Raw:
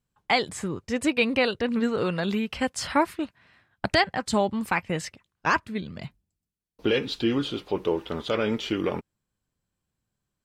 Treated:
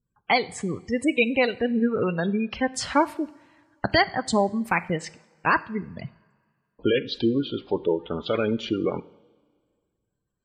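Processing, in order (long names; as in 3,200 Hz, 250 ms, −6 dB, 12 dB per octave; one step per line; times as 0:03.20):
transient designer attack 0 dB, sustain −5 dB
gate on every frequency bin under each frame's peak −20 dB strong
coupled-rooms reverb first 0.58 s, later 2 s, from −16 dB, DRR 15 dB
level +2 dB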